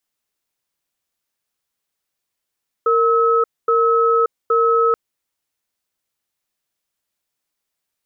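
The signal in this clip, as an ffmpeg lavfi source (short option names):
-f lavfi -i "aevalsrc='0.178*(sin(2*PI*461*t)+sin(2*PI*1290*t))*clip(min(mod(t,0.82),0.58-mod(t,0.82))/0.005,0,1)':d=2.08:s=44100"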